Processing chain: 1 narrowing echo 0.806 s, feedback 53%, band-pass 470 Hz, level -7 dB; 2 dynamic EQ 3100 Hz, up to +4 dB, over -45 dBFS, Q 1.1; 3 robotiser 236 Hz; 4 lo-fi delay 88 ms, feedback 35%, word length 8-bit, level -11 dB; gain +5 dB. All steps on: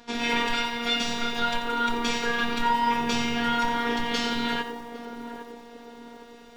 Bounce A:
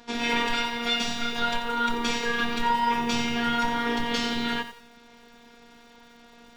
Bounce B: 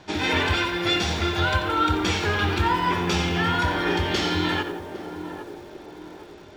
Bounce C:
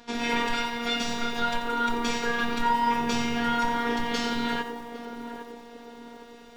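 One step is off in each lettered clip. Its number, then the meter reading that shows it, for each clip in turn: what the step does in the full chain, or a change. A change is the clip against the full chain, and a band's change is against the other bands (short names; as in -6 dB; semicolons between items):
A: 1, momentary loudness spread change -16 LU; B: 3, 125 Hz band +14.0 dB; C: 2, 4 kHz band -3.0 dB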